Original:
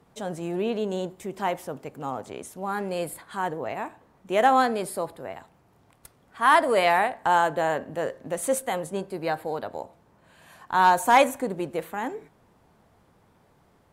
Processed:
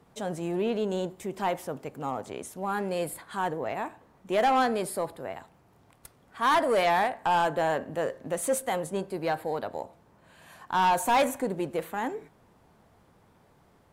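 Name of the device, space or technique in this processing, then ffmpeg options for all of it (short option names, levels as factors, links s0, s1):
saturation between pre-emphasis and de-emphasis: -af "highshelf=f=6300:g=8,asoftclip=type=tanh:threshold=0.126,highshelf=f=6300:g=-8"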